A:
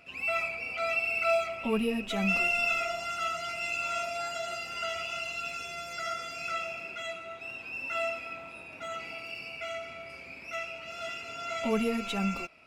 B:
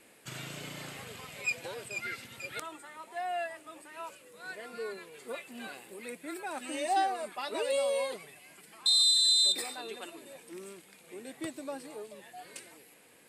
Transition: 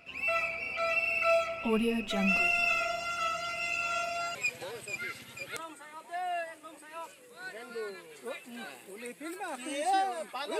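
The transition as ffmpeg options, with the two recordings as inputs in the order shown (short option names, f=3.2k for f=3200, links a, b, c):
-filter_complex "[0:a]apad=whole_dur=10.59,atrim=end=10.59,atrim=end=4.352[a];[1:a]atrim=start=1.378:end=7.62[b];[a][b]acrossfade=d=0.004:c1=hsin:c2=hsin"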